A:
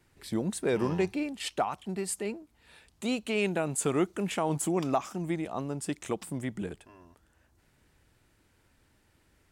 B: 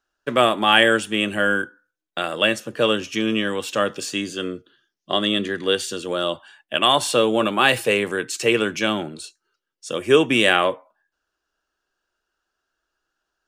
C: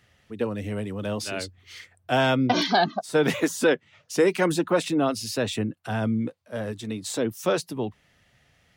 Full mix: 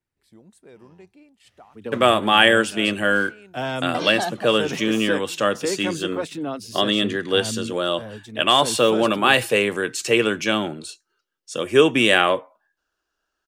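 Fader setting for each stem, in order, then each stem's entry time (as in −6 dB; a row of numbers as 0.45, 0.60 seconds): −19.5, +0.5, −5.5 decibels; 0.00, 1.65, 1.45 seconds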